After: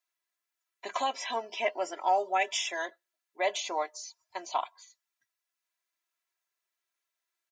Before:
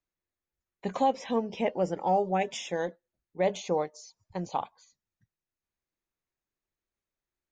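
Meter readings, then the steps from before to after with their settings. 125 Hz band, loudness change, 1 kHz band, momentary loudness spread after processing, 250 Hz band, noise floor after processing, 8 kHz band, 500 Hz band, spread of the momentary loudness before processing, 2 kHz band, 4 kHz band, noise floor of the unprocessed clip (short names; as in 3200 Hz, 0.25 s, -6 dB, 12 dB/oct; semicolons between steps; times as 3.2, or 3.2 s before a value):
under -30 dB, -1.5 dB, 0.0 dB, 14 LU, -14.5 dB, under -85 dBFS, +6.0 dB, -5.0 dB, 13 LU, +6.5 dB, +6.5 dB, under -85 dBFS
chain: HPF 940 Hz 12 dB/oct; comb 3 ms, depth 91%; gain +4 dB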